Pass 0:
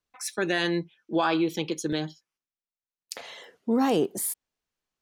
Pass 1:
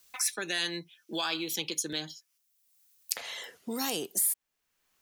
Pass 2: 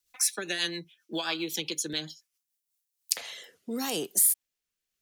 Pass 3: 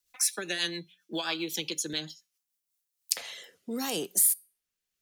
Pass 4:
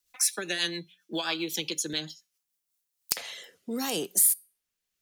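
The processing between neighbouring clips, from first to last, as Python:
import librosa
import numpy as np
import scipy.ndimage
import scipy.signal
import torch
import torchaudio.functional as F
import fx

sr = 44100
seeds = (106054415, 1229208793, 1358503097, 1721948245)

y1 = librosa.effects.preemphasis(x, coef=0.9, zi=[0.0])
y1 = fx.band_squash(y1, sr, depth_pct=70)
y1 = y1 * 10.0 ** (7.0 / 20.0)
y2 = fx.rotary_switch(y1, sr, hz=7.5, then_hz=0.85, switch_at_s=2.24)
y2 = fx.band_widen(y2, sr, depth_pct=40)
y2 = y2 * 10.0 ** (3.0 / 20.0)
y3 = fx.comb_fb(y2, sr, f0_hz=180.0, decay_s=0.35, harmonics='odd', damping=0.0, mix_pct=40)
y3 = y3 * 10.0 ** (3.5 / 20.0)
y4 = np.minimum(y3, 2.0 * 10.0 ** (-7.5 / 20.0) - y3)
y4 = y4 * 10.0 ** (1.5 / 20.0)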